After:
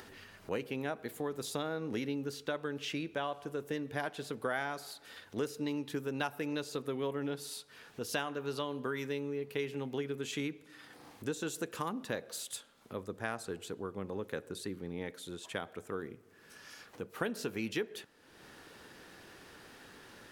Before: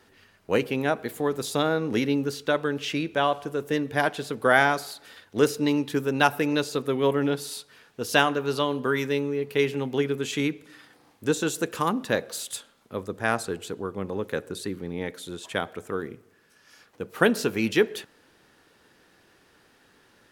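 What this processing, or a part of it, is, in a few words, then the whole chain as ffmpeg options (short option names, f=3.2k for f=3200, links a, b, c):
upward and downward compression: -af "acompressor=mode=upward:threshold=-34dB:ratio=2.5,acompressor=threshold=-26dB:ratio=3,volume=-7.5dB"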